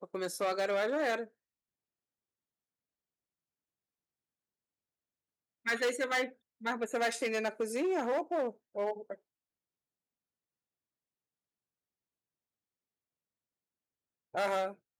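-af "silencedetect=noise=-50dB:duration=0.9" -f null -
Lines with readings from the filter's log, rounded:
silence_start: 1.27
silence_end: 5.66 | silence_duration: 4.38
silence_start: 9.15
silence_end: 14.34 | silence_duration: 5.19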